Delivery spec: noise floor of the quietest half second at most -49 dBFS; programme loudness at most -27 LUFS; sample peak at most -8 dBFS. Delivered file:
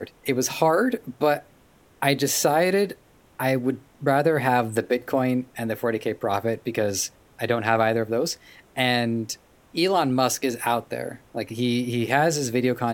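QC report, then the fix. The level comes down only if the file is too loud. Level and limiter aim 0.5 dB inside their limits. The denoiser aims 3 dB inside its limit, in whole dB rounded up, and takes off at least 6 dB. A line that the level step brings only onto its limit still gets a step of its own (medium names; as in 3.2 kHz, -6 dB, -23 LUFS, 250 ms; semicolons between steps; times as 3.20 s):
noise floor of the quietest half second -56 dBFS: pass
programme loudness -24.0 LUFS: fail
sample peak -5.0 dBFS: fail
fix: trim -3.5 dB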